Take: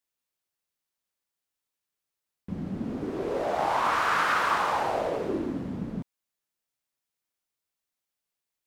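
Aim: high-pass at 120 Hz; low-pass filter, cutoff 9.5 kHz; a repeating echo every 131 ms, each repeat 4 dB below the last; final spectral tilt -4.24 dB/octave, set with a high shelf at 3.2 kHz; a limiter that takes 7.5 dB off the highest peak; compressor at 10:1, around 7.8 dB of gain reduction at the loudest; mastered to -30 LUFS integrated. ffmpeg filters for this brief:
-af "highpass=120,lowpass=9500,highshelf=f=3200:g=6,acompressor=threshold=0.0398:ratio=10,alimiter=level_in=1.58:limit=0.0631:level=0:latency=1,volume=0.631,aecho=1:1:131|262|393|524|655|786|917|1048|1179:0.631|0.398|0.25|0.158|0.0994|0.0626|0.0394|0.0249|0.0157,volume=1.68"

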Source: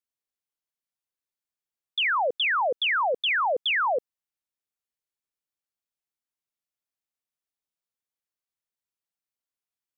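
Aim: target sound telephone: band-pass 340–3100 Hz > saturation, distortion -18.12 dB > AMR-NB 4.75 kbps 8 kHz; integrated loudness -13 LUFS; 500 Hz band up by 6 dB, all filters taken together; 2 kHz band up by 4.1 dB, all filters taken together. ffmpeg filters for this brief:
-af "highpass=340,lowpass=3100,equalizer=f=500:t=o:g=7.5,equalizer=f=2000:t=o:g=5.5,asoftclip=threshold=0.126,volume=3.98" -ar 8000 -c:a libopencore_amrnb -b:a 4750

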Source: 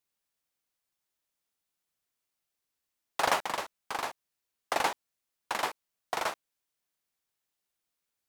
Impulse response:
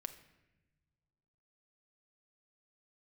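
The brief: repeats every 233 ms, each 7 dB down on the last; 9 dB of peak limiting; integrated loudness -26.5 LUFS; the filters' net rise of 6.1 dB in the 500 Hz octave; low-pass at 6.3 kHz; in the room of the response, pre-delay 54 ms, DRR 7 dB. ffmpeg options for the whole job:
-filter_complex "[0:a]lowpass=6300,equalizer=f=500:t=o:g=8,alimiter=limit=0.112:level=0:latency=1,aecho=1:1:233|466|699|932|1165:0.447|0.201|0.0905|0.0407|0.0183,asplit=2[s0][s1];[1:a]atrim=start_sample=2205,adelay=54[s2];[s1][s2]afir=irnorm=-1:irlink=0,volume=0.631[s3];[s0][s3]amix=inputs=2:normalize=0,volume=2.37"

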